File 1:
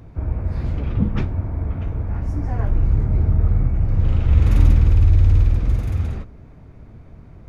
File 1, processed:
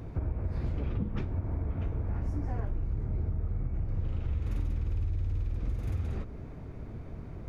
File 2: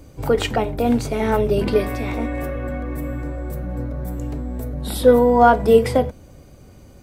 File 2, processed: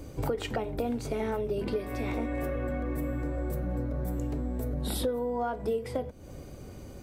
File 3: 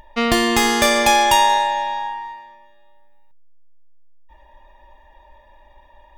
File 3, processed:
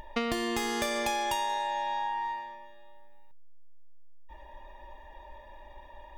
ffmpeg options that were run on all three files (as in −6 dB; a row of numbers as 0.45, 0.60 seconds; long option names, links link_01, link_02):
-af "equalizer=frequency=390:width_type=o:width=0.91:gain=3.5,acompressor=threshold=-28dB:ratio=10"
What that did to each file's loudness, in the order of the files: −15.0, −13.0, −15.0 LU